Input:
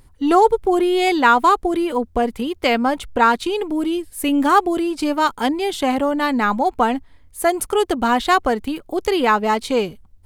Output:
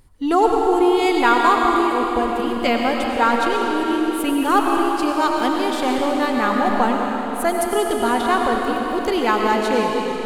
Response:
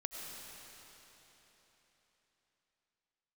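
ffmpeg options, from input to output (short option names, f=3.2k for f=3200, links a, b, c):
-filter_complex "[0:a]asettb=1/sr,asplit=3[a][b][c];[a]atrim=end=8.214[d];[b]atrim=start=8.21:end=8.62,asetpts=PTS-STARTPTS,afade=t=in:d=0.004:c=qsin,afade=t=out:st=0.406:d=0.004:c=qsin,highshelf=f=3.9k:g=-12[e];[c]atrim=start=8.616[f];[d][e]acrossfade=d=0.004:c1=hsin:c2=qsin[g];[g][f]acrossfade=d=0.004:c1=qsin:c2=hsin[h];[1:a]atrim=start_sample=2205[i];[h][i]afir=irnorm=-1:irlink=0"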